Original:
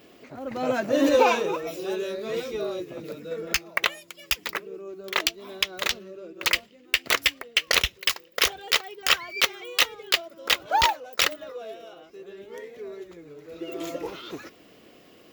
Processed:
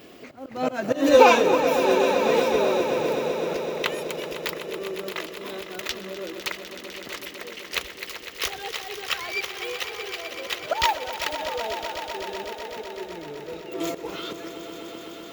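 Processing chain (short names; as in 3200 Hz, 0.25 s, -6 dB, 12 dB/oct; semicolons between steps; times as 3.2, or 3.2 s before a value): auto swell 0.238 s; swelling echo 0.126 s, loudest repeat 5, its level -13 dB; 7.04–7.72 hard clip -33 dBFS, distortion -35 dB; gain +5.5 dB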